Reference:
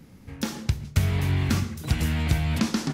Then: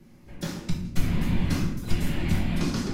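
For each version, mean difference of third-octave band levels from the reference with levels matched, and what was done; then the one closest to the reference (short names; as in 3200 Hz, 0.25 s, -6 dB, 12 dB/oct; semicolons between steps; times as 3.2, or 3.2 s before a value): 3.5 dB: whisperiser; shoebox room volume 94 m³, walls mixed, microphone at 0.95 m; gain -7 dB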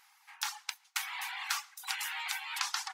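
18.0 dB: reverb removal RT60 0.8 s; brick-wall FIR high-pass 740 Hz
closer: first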